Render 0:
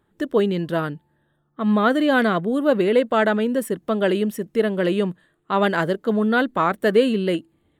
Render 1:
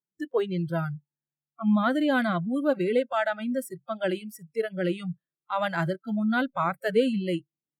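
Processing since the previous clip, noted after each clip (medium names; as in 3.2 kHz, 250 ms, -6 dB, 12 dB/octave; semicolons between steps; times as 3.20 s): spectral noise reduction 30 dB; resonant low shelf 100 Hz -12 dB, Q 3; trim -6.5 dB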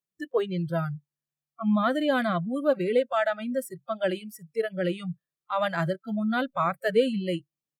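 comb 1.7 ms, depth 30%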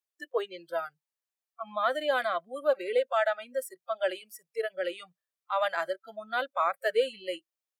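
high-pass 460 Hz 24 dB/octave; trim -1 dB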